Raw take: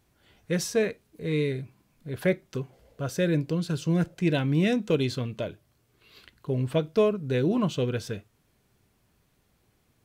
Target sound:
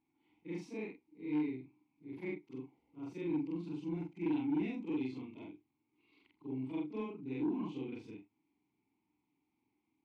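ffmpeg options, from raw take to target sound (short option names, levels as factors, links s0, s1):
-filter_complex "[0:a]afftfilt=real='re':imag='-im':win_size=4096:overlap=0.75,asplit=3[s0][s1][s2];[s0]bandpass=f=300:t=q:w=8,volume=1[s3];[s1]bandpass=f=870:t=q:w=8,volume=0.501[s4];[s2]bandpass=f=2240:t=q:w=8,volume=0.355[s5];[s3][s4][s5]amix=inputs=3:normalize=0,asoftclip=type=tanh:threshold=0.0251,volume=1.68"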